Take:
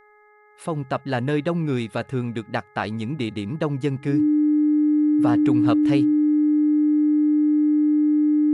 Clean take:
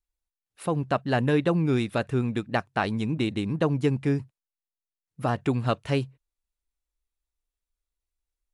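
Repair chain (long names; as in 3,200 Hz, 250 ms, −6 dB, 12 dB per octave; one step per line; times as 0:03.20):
hum removal 419.7 Hz, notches 5
notch filter 300 Hz, Q 30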